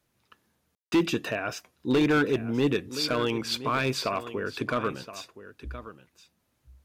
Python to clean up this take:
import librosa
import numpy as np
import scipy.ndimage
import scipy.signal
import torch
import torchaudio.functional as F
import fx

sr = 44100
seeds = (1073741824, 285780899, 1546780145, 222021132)

y = fx.fix_declip(x, sr, threshold_db=-17.5)
y = fx.fix_ambience(y, sr, seeds[0], print_start_s=6.11, print_end_s=6.61, start_s=0.75, end_s=0.92)
y = fx.fix_echo_inverse(y, sr, delay_ms=1021, level_db=-14.5)